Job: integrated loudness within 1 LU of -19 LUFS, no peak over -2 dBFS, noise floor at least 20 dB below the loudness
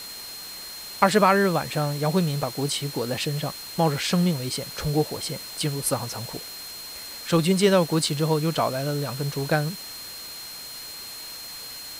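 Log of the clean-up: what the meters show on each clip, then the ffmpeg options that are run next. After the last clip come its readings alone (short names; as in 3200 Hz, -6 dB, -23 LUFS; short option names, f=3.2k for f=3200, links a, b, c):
steady tone 4200 Hz; tone level -38 dBFS; noise floor -38 dBFS; noise floor target -46 dBFS; loudness -25.5 LUFS; peak -2.5 dBFS; loudness target -19.0 LUFS
-> -af "bandreject=f=4.2k:w=30"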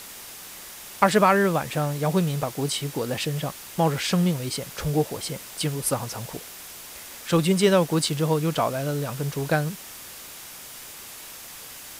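steady tone none; noise floor -41 dBFS; noise floor target -45 dBFS
-> -af "afftdn=nr=6:nf=-41"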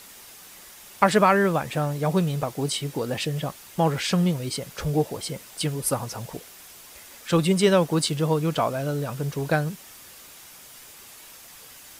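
noise floor -47 dBFS; loudness -24.5 LUFS; peak -2.5 dBFS; loudness target -19.0 LUFS
-> -af "volume=5.5dB,alimiter=limit=-2dB:level=0:latency=1"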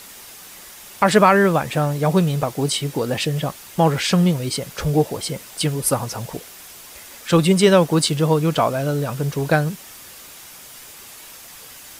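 loudness -19.0 LUFS; peak -2.0 dBFS; noise floor -41 dBFS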